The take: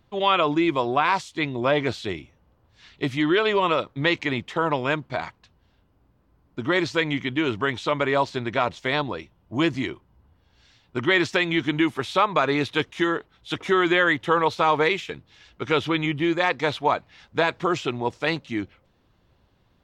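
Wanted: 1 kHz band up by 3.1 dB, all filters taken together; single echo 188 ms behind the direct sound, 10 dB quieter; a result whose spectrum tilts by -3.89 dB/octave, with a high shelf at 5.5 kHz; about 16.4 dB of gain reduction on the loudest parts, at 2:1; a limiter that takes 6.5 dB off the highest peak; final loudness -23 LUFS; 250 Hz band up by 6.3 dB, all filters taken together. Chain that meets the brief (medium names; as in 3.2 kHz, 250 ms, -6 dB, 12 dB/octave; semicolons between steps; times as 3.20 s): peaking EQ 250 Hz +9 dB; peaking EQ 1 kHz +3 dB; treble shelf 5.5 kHz +8 dB; compression 2:1, threshold -44 dBFS; peak limiter -26.5 dBFS; delay 188 ms -10 dB; trim +14 dB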